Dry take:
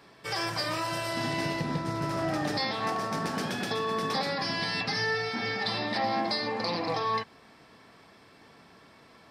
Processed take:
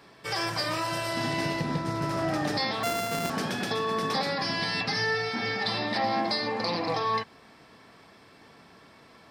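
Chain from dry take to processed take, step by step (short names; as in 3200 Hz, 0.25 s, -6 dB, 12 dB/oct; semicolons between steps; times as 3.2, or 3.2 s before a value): 2.83–3.3 sample sorter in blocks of 64 samples; gain +1.5 dB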